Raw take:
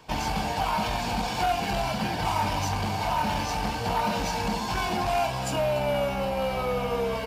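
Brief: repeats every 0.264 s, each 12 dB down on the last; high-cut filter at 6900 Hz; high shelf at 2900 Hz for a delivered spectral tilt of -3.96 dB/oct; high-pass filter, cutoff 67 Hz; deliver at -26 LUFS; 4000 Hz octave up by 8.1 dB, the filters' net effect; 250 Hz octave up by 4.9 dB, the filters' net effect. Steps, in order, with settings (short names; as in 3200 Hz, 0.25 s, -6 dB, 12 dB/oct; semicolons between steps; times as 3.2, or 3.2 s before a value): HPF 67 Hz; LPF 6900 Hz; bell 250 Hz +6.5 dB; high shelf 2900 Hz +4 dB; bell 4000 Hz +8 dB; feedback echo 0.264 s, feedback 25%, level -12 dB; gain -2 dB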